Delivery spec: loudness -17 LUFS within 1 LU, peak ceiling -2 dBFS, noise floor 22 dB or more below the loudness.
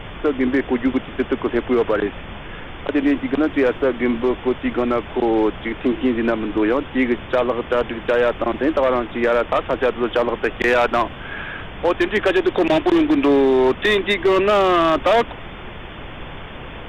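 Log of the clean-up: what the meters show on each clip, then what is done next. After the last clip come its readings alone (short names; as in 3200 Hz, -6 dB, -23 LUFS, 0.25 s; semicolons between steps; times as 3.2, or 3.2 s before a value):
clipped 1.7%; flat tops at -10.0 dBFS; noise floor -34 dBFS; noise floor target -41 dBFS; loudness -19.0 LUFS; peak -10.0 dBFS; loudness target -17.0 LUFS
-> clip repair -10 dBFS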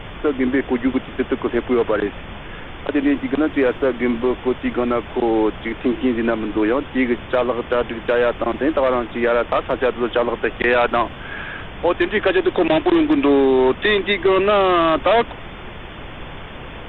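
clipped 0.0%; noise floor -34 dBFS; noise floor target -41 dBFS
-> noise print and reduce 7 dB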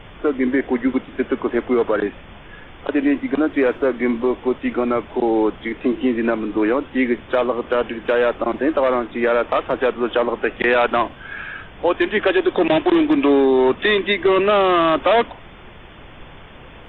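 noise floor -41 dBFS; loudness -19.0 LUFS; peak -5.5 dBFS; loudness target -17.0 LUFS
-> gain +2 dB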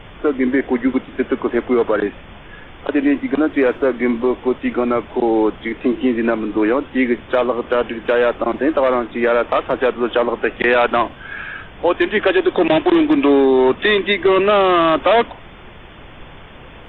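loudness -17.0 LUFS; peak -3.5 dBFS; noise floor -39 dBFS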